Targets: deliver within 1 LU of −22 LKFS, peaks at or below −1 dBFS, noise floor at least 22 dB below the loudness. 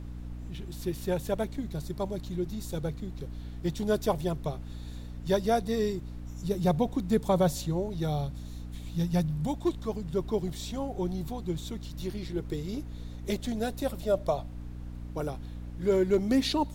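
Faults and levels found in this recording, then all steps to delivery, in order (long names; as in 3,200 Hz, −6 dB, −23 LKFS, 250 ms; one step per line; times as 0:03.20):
mains hum 60 Hz; hum harmonics up to 300 Hz; level of the hum −38 dBFS; background noise floor −41 dBFS; target noise floor −54 dBFS; integrated loudness −31.5 LKFS; sample peak −13.5 dBFS; target loudness −22.0 LKFS
→ mains-hum notches 60/120/180/240/300 Hz
noise reduction from a noise print 13 dB
level +9.5 dB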